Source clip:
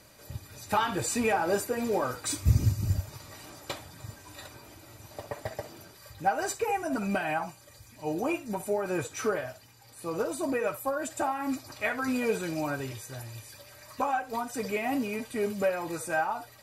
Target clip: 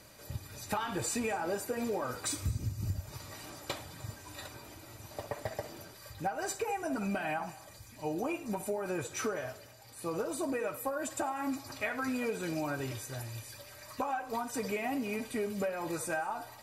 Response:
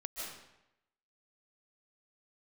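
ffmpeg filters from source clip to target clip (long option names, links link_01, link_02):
-filter_complex "[0:a]acompressor=threshold=-31dB:ratio=6,asplit=2[link_01][link_02];[1:a]atrim=start_sample=2205,asetrate=70560,aresample=44100,adelay=105[link_03];[link_02][link_03]afir=irnorm=-1:irlink=0,volume=-13.5dB[link_04];[link_01][link_04]amix=inputs=2:normalize=0"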